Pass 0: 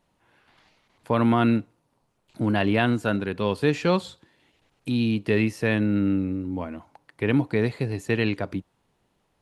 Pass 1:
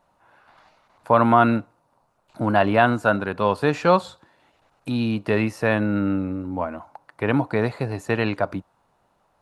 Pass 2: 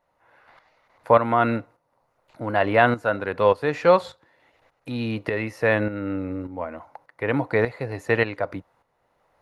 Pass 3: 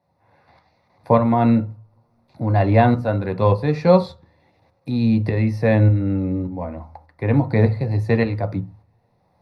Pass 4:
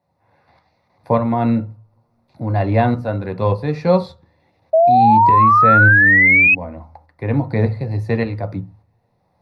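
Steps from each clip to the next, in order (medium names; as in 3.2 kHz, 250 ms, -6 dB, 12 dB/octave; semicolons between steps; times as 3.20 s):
high-order bell 920 Hz +9.5 dB; band-stop 3.2 kHz, Q 17
graphic EQ with 31 bands 200 Hz -6 dB, 500 Hz +7 dB, 2 kHz +9 dB, 8 kHz -6 dB; tremolo saw up 1.7 Hz, depth 65%
reverberation RT60 0.30 s, pre-delay 3 ms, DRR 6 dB; trim -6 dB
painted sound rise, 4.73–6.55 s, 630–2600 Hz -10 dBFS; trim -1 dB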